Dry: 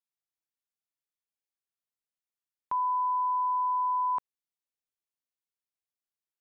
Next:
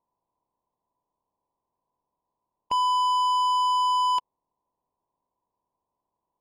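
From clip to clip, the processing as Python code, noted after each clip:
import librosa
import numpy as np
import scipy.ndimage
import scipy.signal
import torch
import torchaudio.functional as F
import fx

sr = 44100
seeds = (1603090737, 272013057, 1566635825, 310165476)

y = fx.bin_compress(x, sr, power=0.6)
y = scipy.signal.sosfilt(scipy.signal.ellip(4, 1.0, 40, 1000.0, 'lowpass', fs=sr, output='sos'), y)
y = fx.leveller(y, sr, passes=3)
y = y * librosa.db_to_amplitude(2.5)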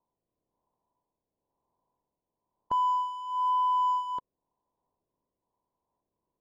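y = fx.rotary(x, sr, hz=1.0)
y = np.clip(y, -10.0 ** (-26.0 / 20.0), 10.0 ** (-26.0 / 20.0))
y = np.convolve(y, np.full(17, 1.0 / 17))[:len(y)]
y = y * librosa.db_to_amplitude(4.0)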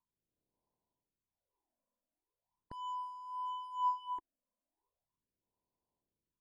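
y = fx.phaser_stages(x, sr, stages=8, low_hz=110.0, high_hz=2600.0, hz=0.39, feedback_pct=45)
y = y * librosa.db_to_amplitude(-6.5)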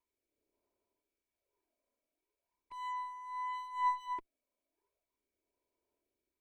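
y = fx.lower_of_two(x, sr, delay_ms=3.1)
y = fx.small_body(y, sr, hz=(450.0, 2300.0), ring_ms=20, db=14)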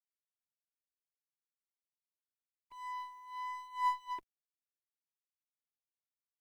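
y = fx.law_mismatch(x, sr, coded='A')
y = y * librosa.db_to_amplitude(1.0)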